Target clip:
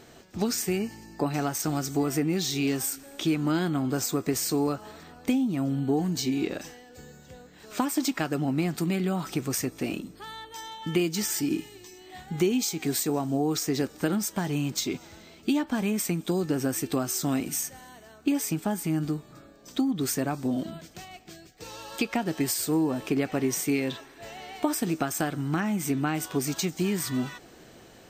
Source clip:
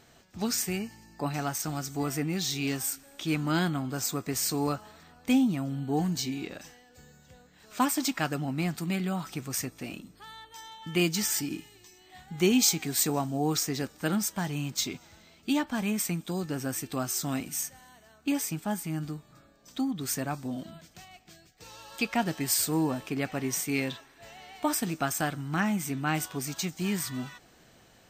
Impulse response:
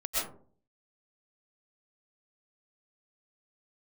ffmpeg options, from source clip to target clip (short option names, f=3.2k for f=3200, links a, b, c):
-af "acompressor=threshold=-31dB:ratio=10,equalizer=f=370:t=o:w=1.2:g=7,volume=5dB"